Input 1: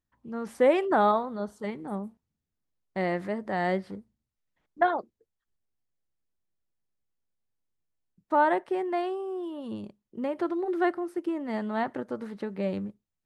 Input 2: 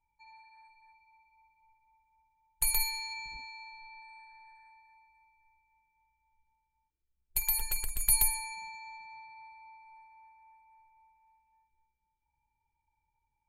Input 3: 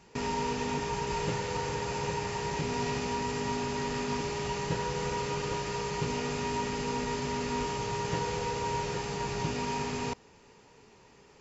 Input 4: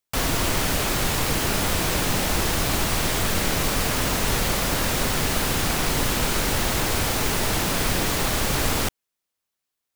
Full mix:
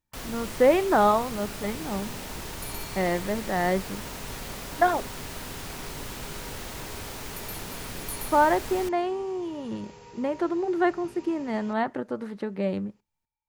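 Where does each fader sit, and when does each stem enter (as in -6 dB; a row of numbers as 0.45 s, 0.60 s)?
+2.5 dB, -12.0 dB, -15.5 dB, -14.5 dB; 0.00 s, 0.00 s, 1.60 s, 0.00 s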